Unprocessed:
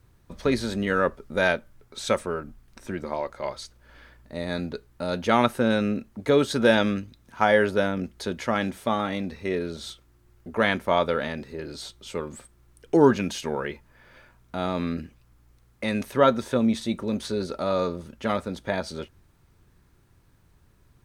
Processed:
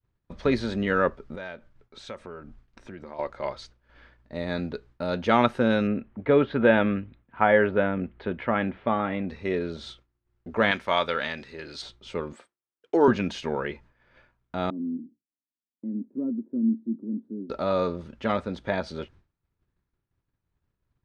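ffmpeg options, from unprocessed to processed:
-filter_complex "[0:a]asettb=1/sr,asplit=3[s0][s1][s2];[s0]atrim=end=1.354[s3];[s1]atrim=start=1.35:end=3.19,asetpts=PTS-STARTPTS,afade=t=in:d=0.004:c=qsin,afade=t=out:st=1.836:d=0.004:c=qsin,acompressor=threshold=0.00891:ratio=2.5:attack=3.2:release=140:knee=1:detection=peak[s4];[s2]atrim=start=3.186[s5];[s3][s4]acrossfade=d=0.004:c1=hsin:c2=qsin[s6];[s6][s5]acrossfade=d=0.004:c1=qsin:c2=hsin,asettb=1/sr,asplit=3[s7][s8][s9];[s7]atrim=end=5.874[s10];[s8]atrim=start=5.87:end=9.29,asetpts=PTS-STARTPTS,afade=t=in:d=0.004:c=qsin,afade=t=out:st=3.416:d=0.004:c=qsin,lowpass=f=2800:w=0.5412,lowpass=f=2800:w=1.3066[s11];[s9]atrim=start=9.286[s12];[s10][s11]acrossfade=d=0.004:c1=hsin:c2=qsin[s13];[s13][s12]acrossfade=d=0.004:c1=qsin:c2=hsin,asettb=1/sr,asplit=3[s14][s15][s16];[s14]atrim=end=10.714[s17];[s15]atrim=start=10.71:end=11.82,asetpts=PTS-STARTPTS,afade=t=in:d=0.004:c=qsin,afade=t=out:st=1.106:d=0.004:c=qsin,tiltshelf=f=1100:g=-7.5[s18];[s16]atrim=start=11.816[s19];[s17][s18]acrossfade=d=0.004:c1=hsin:c2=qsin[s20];[s20][s19]acrossfade=d=0.004:c1=qsin:c2=hsin,asettb=1/sr,asplit=3[s21][s22][s23];[s21]atrim=end=12.334[s24];[s22]atrim=start=12.33:end=13.08,asetpts=PTS-STARTPTS,afade=t=in:d=0.004:c=qsin,afade=t=out:st=0.746:d=0.004:c=qsin,highpass=370[s25];[s23]atrim=start=13.076[s26];[s24][s25]acrossfade=d=0.004:c1=hsin:c2=qsin[s27];[s27][s26]acrossfade=d=0.004:c1=qsin:c2=hsin,asettb=1/sr,asplit=3[s28][s29][s30];[s28]atrim=end=14.704[s31];[s29]atrim=start=14.7:end=17.5,asetpts=PTS-STARTPTS,afade=t=in:d=0.004:c=qsin,afade=t=out:st=2.796:d=0.004:c=qsin,asuperpass=centerf=260:order=4:qfactor=2.5[s32];[s30]atrim=start=17.496[s33];[s31][s32]acrossfade=d=0.004:c1=hsin:c2=qsin[s34];[s34][s33]acrossfade=d=0.004:c1=qsin:c2=hsin,lowpass=4000,agate=range=0.0224:threshold=0.00501:ratio=3:detection=peak"

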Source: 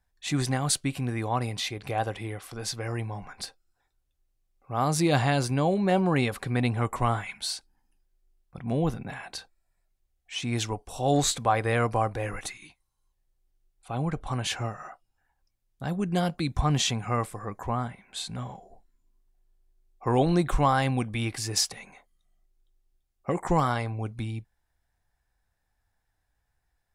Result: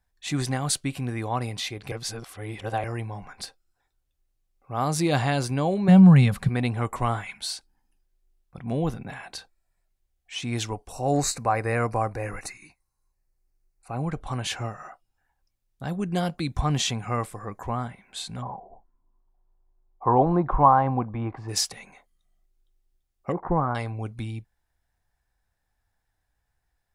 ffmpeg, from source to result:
-filter_complex "[0:a]asettb=1/sr,asplit=3[s0][s1][s2];[s0]atrim=end=5.884[s3];[s1]atrim=start=5.88:end=6.49,asetpts=PTS-STARTPTS,afade=t=in:d=0.004:c=qsin,afade=t=out:st=0.606:d=0.004:c=qsin,lowshelf=f=240:t=q:w=3:g=9[s4];[s2]atrim=start=6.486[s5];[s3][s4]acrossfade=d=0.004:c1=hsin:c2=qsin[s6];[s6][s5]acrossfade=d=0.004:c1=qsin:c2=hsin,asettb=1/sr,asplit=3[s7][s8][s9];[s7]atrim=end=10.924[s10];[s8]atrim=start=10.92:end=14.03,asetpts=PTS-STARTPTS,afade=t=in:d=0.004:c=qsin,afade=t=out:st=3.106:d=0.004:c=qsin,asuperstop=centerf=3300:order=4:qfactor=2.3[s11];[s9]atrim=start=14.026[s12];[s10][s11]acrossfade=d=0.004:c1=hsin:c2=qsin[s13];[s13][s12]acrossfade=d=0.004:c1=qsin:c2=hsin,asplit=3[s14][s15][s16];[s14]afade=t=out:st=18.41:d=0.02[s17];[s15]lowpass=f=980:t=q:w=3.2,afade=t=in:st=18.41:d=0.02,afade=t=out:st=21.48:d=0.02[s18];[s16]afade=t=in:st=21.48:d=0.02[s19];[s17][s18][s19]amix=inputs=3:normalize=0,asettb=1/sr,asplit=3[s20][s21][s22];[s20]atrim=end=23.324[s23];[s21]atrim=start=23.32:end=23.75,asetpts=PTS-STARTPTS,afade=t=in:d=0.004:c=qsin,afade=t=out:st=0.426:d=0.004:c=qsin,lowpass=f=1400:w=0.5412,lowpass=f=1400:w=1.3066[s24];[s22]atrim=start=23.746[s25];[s23][s24]acrossfade=d=0.004:c1=hsin:c2=qsin[s26];[s26][s25]acrossfade=d=0.004:c1=qsin:c2=hsin,asplit=3[s27][s28][s29];[s27]atrim=end=1.922[s30];[s28]atrim=start=1.918:end=2.842,asetpts=PTS-STARTPTS,areverse[s31];[s29]atrim=start=2.838[s32];[s30][s31]acrossfade=d=0.004:c1=hsin:c2=hsin[s33];[s33][s32]acrossfade=d=0.004:c1=hsin:c2=hsin"

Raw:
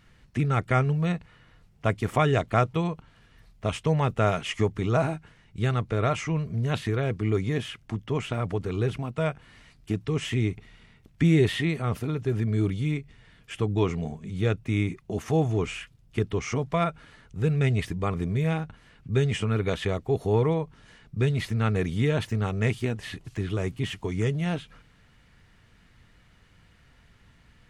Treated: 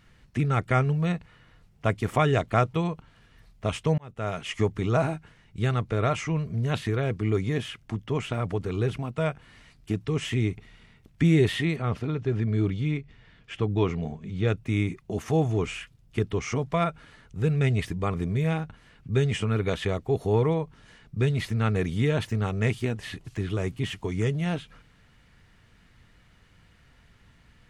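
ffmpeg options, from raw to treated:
-filter_complex "[0:a]asettb=1/sr,asplit=3[s0][s1][s2];[s0]atrim=end=11.764[s3];[s1]atrim=start=11.76:end=14.48,asetpts=PTS-STARTPTS,afade=t=in:d=0.004:c=qsin,afade=t=out:st=2.716:d=0.004:c=qsin,lowpass=5000[s4];[s2]atrim=start=14.476[s5];[s3][s4]acrossfade=d=0.004:c1=hsin:c2=qsin[s6];[s6][s5]acrossfade=d=0.004:c1=qsin:c2=hsin,asplit=2[s7][s8];[s7]atrim=end=3.98,asetpts=PTS-STARTPTS,afade=t=out:st=3.976:d=0.004:c=hsin[s9];[s8]atrim=start=3.98,asetpts=PTS-STARTPTS,afade=t=in:d=0.66[s10];[s9][s10]concat=n=2:v=0:a=1"

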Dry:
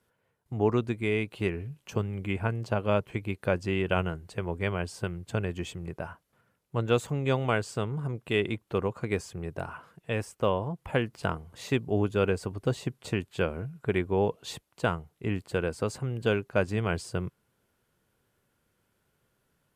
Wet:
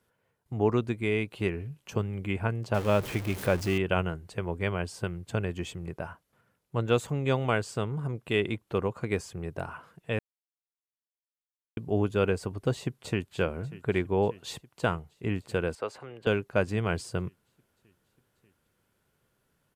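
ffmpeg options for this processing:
-filter_complex "[0:a]asettb=1/sr,asplit=3[s0][s1][s2];[s0]atrim=end=2.744[s3];[s1]atrim=start=2.74:end=3.78,asetpts=PTS-STARTPTS,afade=t=in:d=0.004:c=qsin,afade=t=out:st=1.036:d=0.004:c=qsin,aeval=exprs='val(0)+0.5*0.0224*sgn(val(0))':c=same[s4];[s2]atrim=start=3.776[s5];[s3][s4]acrossfade=d=0.004:c1=hsin:c2=qsin[s6];[s6][s5]acrossfade=d=0.004:c1=qsin:c2=hsin,asplit=2[s7][s8];[s8]afade=t=in:st=12.73:d=0.01,afade=t=out:st=13.36:d=0.01,aecho=0:1:590|1180|1770|2360|2950|3540|4130|4720|5310:0.125893|0.0944194|0.0708146|0.0531109|0.0398332|0.0298749|0.0224062|0.0168046|0.0126035[s9];[s7][s9]amix=inputs=2:normalize=0,asettb=1/sr,asplit=3[s10][s11][s12];[s10]atrim=end=15.754[s13];[s11]atrim=start=15.75:end=16.27,asetpts=PTS-STARTPTS,afade=t=in:d=0.004:c=qsin,afade=t=out:st=0.516:d=0.004:c=qsin,acrossover=split=390 3900:gain=0.112 1 0.224[s14][s15][s16];[s14][s15][s16]amix=inputs=3:normalize=0[s17];[s12]atrim=start=16.266[s18];[s13][s17]acrossfade=d=0.004:c1=hsin:c2=qsin[s19];[s19][s18]acrossfade=d=0.004:c1=qsin:c2=hsin,asplit=3[s20][s21][s22];[s20]atrim=end=10.19,asetpts=PTS-STARTPTS,afade=t=out:st=10.186:d=0.004:c=hsin[s23];[s21]atrim=start=10.19:end=11.77,asetpts=PTS-STARTPTS,volume=0[s24];[s22]atrim=start=11.77,asetpts=PTS-STARTPTS,afade=t=in:d=0.004:c=hsin[s25];[s23][s24][s25]concat=n=3:v=0:a=1"

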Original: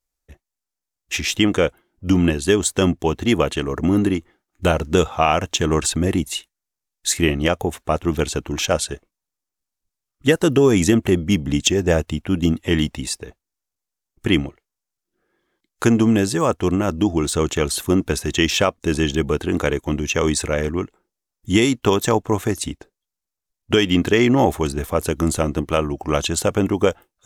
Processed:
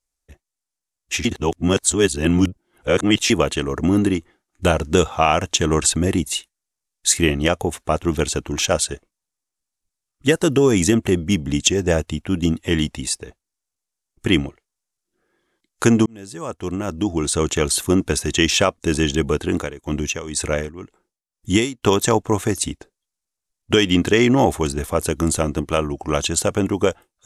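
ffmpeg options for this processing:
-filter_complex "[0:a]asplit=3[s0][s1][s2];[s0]afade=t=out:st=19.39:d=0.02[s3];[s1]tremolo=f=2:d=0.82,afade=t=in:st=19.39:d=0.02,afade=t=out:st=21.82:d=0.02[s4];[s2]afade=t=in:st=21.82:d=0.02[s5];[s3][s4][s5]amix=inputs=3:normalize=0,asplit=4[s6][s7][s8][s9];[s6]atrim=end=1.252[s10];[s7]atrim=start=1.248:end=3.302,asetpts=PTS-STARTPTS,areverse[s11];[s8]atrim=start=3.298:end=16.06,asetpts=PTS-STARTPTS,afade=t=out:st=12.758:d=0.004:c=hsin[s12];[s9]atrim=start=16.06,asetpts=PTS-STARTPTS,afade=t=in:d=1.48[s13];[s10][s11]acrossfade=d=0.004:c1=hsin:c2=hsin[s14];[s12][s13]concat=n=2:v=0:a=1[s15];[s14][s15]acrossfade=d=0.004:c1=hsin:c2=hsin,lowpass=f=11000:w=0.5412,lowpass=f=11000:w=1.3066,highshelf=f=7000:g=8,dynaudnorm=f=440:g=11:m=3.76,volume=0.891"

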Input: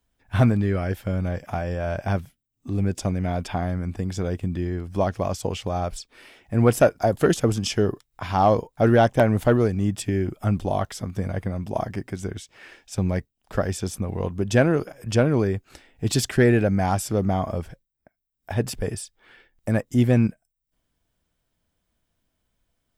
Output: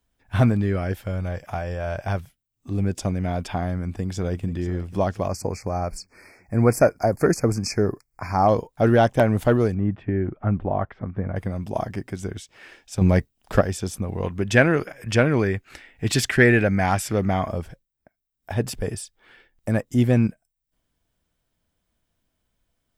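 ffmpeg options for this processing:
-filter_complex "[0:a]asettb=1/sr,asplit=3[s0][s1][s2];[s0]atrim=end=1.054[s3];[s1]atrim=start=1.05:end=2.71,asetpts=PTS-STARTPTS,afade=t=in:d=0.004:c=qsin,afade=t=out:st=1.656:d=0.004:c=qsin,equalizer=f=240:t=o:w=1.2:g=-6.5[s4];[s2]atrim=start=2.706[s5];[s3][s4]acrossfade=d=0.004:c1=hsin:c2=qsin[s6];[s6][s5]acrossfade=d=0.004:c1=qsin:c2=hsin,asplit=2[s7][s8];[s8]afade=t=in:st=3.73:d=0.01,afade=t=out:st=4.5:d=0.01,aecho=0:1:490|980|1470|1960:0.211349|0.0845396|0.0338158|0.0135263[s9];[s7][s9]amix=inputs=2:normalize=0,asplit=3[s10][s11][s12];[s10]afade=t=out:st=5.27:d=0.02[s13];[s11]asuperstop=centerf=3300:order=20:qfactor=1.8,afade=t=in:st=5.27:d=0.02,afade=t=out:st=8.47:d=0.02[s14];[s12]afade=t=in:st=8.47:d=0.02[s15];[s13][s14][s15]amix=inputs=3:normalize=0,asettb=1/sr,asplit=3[s16][s17][s18];[s16]atrim=end=9.744[s19];[s17]atrim=start=9.74:end=11.36,asetpts=PTS-STARTPTS,afade=t=in:d=0.004:c=qsin,afade=t=out:st=1.616:d=0.004:c=qsin,lowpass=f=2000:w=0.5412,lowpass=f=2000:w=1.3066[s20];[s18]atrim=start=11.356[s21];[s19][s20]acrossfade=d=0.004:c1=hsin:c2=qsin[s22];[s22][s21]acrossfade=d=0.004:c1=qsin:c2=hsin,asettb=1/sr,asplit=3[s23][s24][s25];[s23]atrim=end=13.014[s26];[s24]atrim=start=13.01:end=13.61,asetpts=PTS-STARTPTS,afade=t=in:d=0.004:c=qsin,afade=t=out:st=0.596:d=0.004:c=qsin,acontrast=85[s27];[s25]atrim=start=13.606[s28];[s26][s27]acrossfade=d=0.004:c1=hsin:c2=qsin[s29];[s29][s28]acrossfade=d=0.004:c1=qsin:c2=hsin,asettb=1/sr,asplit=3[s30][s31][s32];[s30]atrim=end=14.234[s33];[s31]atrim=start=14.23:end=17.48,asetpts=PTS-STARTPTS,afade=t=in:d=0.004:c=qsin,afade=t=out:st=3.246:d=0.004:c=qsin,equalizer=f=2000:w=1.2:g=10[s34];[s32]atrim=start=17.476[s35];[s33][s34]acrossfade=d=0.004:c1=hsin:c2=qsin[s36];[s36][s35]acrossfade=d=0.004:c1=qsin:c2=hsin"

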